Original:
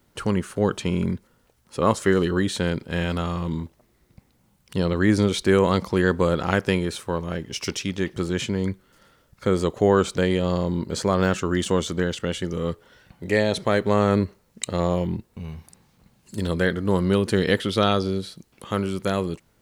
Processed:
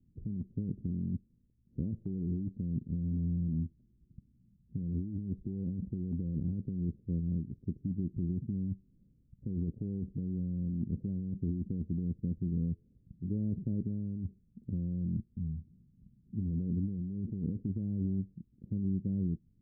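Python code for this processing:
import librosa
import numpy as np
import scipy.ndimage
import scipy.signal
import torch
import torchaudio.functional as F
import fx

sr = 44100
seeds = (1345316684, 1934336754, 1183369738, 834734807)

y = fx.spec_flatten(x, sr, power=0.67, at=(0.75, 1.84), fade=0.02)
y = scipy.signal.sosfilt(scipy.signal.cheby2(4, 70, 1100.0, 'lowpass', fs=sr, output='sos'), y)
y = fx.over_compress(y, sr, threshold_db=-29.0, ratio=-1.0)
y = y * 10.0 ** (-4.5 / 20.0)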